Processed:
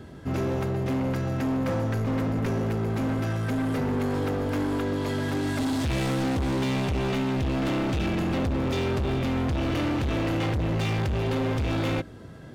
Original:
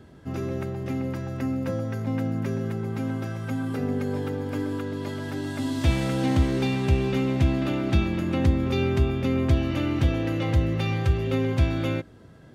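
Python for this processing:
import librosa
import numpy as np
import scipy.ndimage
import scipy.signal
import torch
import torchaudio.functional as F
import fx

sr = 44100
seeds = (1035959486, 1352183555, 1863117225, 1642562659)

p1 = fx.over_compress(x, sr, threshold_db=-26.0, ratio=-1.0)
p2 = x + (p1 * 10.0 ** (-2.0 / 20.0))
y = np.clip(p2, -10.0 ** (-24.0 / 20.0), 10.0 ** (-24.0 / 20.0))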